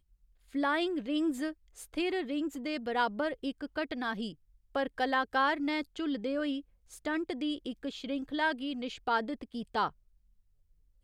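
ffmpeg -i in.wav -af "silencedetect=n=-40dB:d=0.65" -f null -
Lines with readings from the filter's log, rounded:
silence_start: 9.89
silence_end: 11.03 | silence_duration: 1.14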